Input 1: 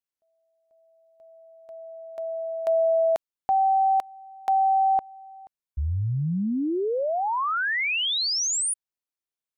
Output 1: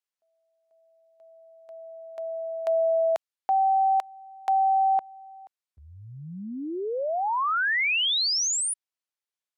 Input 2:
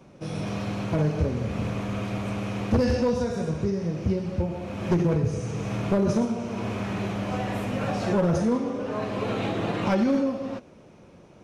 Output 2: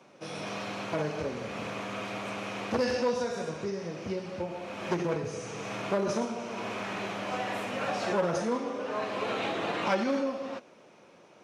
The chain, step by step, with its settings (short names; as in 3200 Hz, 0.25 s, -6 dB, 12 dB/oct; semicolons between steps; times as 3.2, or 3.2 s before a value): weighting filter A